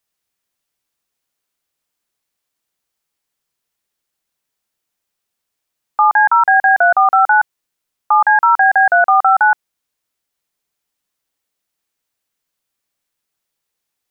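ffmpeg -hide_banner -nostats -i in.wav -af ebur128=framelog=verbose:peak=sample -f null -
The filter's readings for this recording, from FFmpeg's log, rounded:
Integrated loudness:
  I:         -11.5 LUFS
  Threshold: -21.8 LUFS
Loudness range:
  LRA:         8.6 LU
  Threshold: -34.3 LUFS
  LRA low:   -20.4 LUFS
  LRA high:  -11.8 LUFS
Sample peak:
  Peak:       -3.9 dBFS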